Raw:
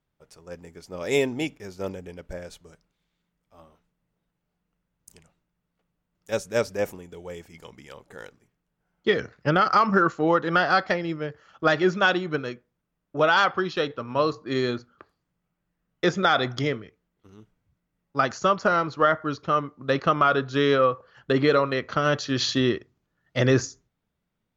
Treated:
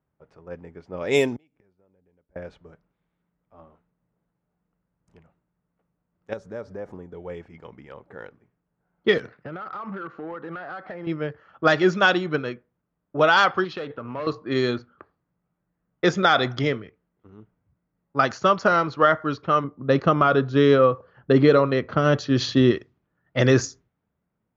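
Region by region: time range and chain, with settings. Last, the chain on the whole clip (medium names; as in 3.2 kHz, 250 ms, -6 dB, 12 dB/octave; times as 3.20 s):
1.36–2.36 s: compression, threshold -36 dBFS + inverted gate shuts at -39 dBFS, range -26 dB
6.33–7.15 s: peaking EQ 2.6 kHz -10.5 dB 0.7 oct + compression 4:1, threshold -35 dBFS
9.18–11.07 s: band-pass 130–4700 Hz + compression 8:1, threshold -32 dBFS + hard clipper -31.5 dBFS
13.64–14.27 s: overload inside the chain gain 19.5 dB + compression 5:1, threshold -31 dBFS + loudspeaker Doppler distortion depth 0.11 ms
19.64–22.71 s: tilt shelf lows +4.5 dB, about 720 Hz + tape noise reduction on one side only decoder only
whole clip: high-pass 53 Hz; level-controlled noise filter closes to 1.5 kHz, open at -16.5 dBFS; trim +2.5 dB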